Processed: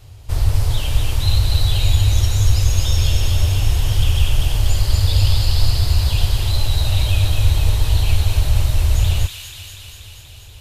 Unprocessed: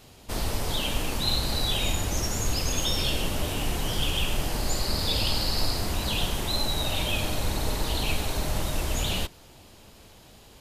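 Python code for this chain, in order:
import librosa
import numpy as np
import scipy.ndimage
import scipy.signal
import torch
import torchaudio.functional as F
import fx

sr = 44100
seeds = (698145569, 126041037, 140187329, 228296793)

y = fx.low_shelf_res(x, sr, hz=140.0, db=12.0, q=3.0)
y = fx.echo_wet_highpass(y, sr, ms=241, feedback_pct=72, hz=2100.0, wet_db=-3)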